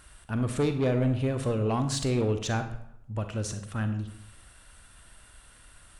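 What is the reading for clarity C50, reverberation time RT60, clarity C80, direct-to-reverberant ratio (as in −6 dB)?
9.5 dB, 0.75 s, 12.5 dB, 7.5 dB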